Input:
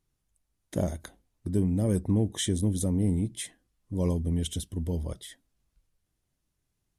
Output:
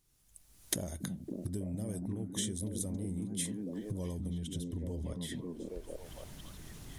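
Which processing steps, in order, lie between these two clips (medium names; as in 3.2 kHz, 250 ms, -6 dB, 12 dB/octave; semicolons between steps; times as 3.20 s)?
recorder AGC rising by 26 dB/s; repeats whose band climbs or falls 277 ms, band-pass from 180 Hz, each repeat 0.7 oct, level 0 dB; compression 6:1, threshold -36 dBFS, peak gain reduction 16 dB; treble shelf 3.3 kHz +10 dB, from 4.38 s -2 dB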